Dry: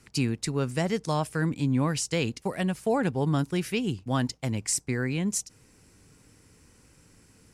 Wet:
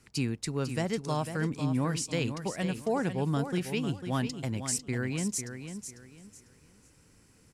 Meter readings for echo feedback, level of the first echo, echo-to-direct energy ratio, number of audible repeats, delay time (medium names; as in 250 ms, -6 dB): 27%, -9.0 dB, -8.5 dB, 3, 498 ms